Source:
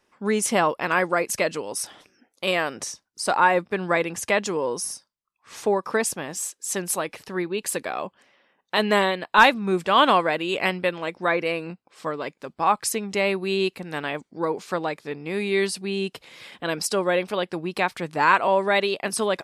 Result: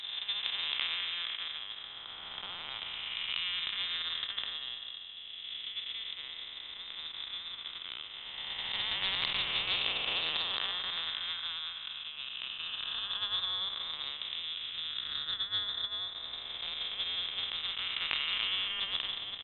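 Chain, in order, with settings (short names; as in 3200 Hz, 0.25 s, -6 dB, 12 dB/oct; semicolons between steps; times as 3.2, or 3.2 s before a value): time blur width 0.885 s; low shelf 180 Hz +11 dB; notches 50/100/150/200/250/300/350/400 Hz; transient shaper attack +11 dB, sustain -10 dB; doubler 13 ms -14 dB; inverted band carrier 3800 Hz; Doppler distortion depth 0.19 ms; gain -8 dB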